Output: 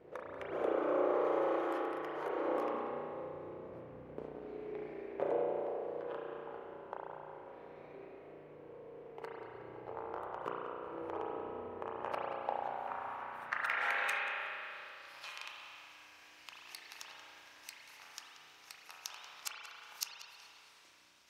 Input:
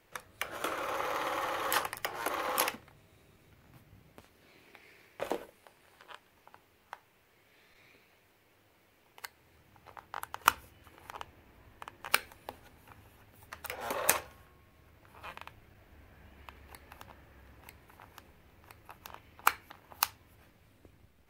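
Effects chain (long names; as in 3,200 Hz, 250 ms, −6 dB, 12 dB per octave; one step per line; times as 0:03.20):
0:01.24–0:02.29: spectral tilt +2 dB per octave
downward compressor 12 to 1, threshold −42 dBFS, peak gain reduction 25.5 dB
mains hum 50 Hz, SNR 14 dB
band-pass filter sweep 430 Hz → 5,600 Hz, 0:11.69–0:15.34
on a send: tape delay 184 ms, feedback 71%, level −7.5 dB, low-pass 2,400 Hz
on the sum: spring reverb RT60 2.4 s, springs 33 ms, chirp 75 ms, DRR −3.5 dB
level +15 dB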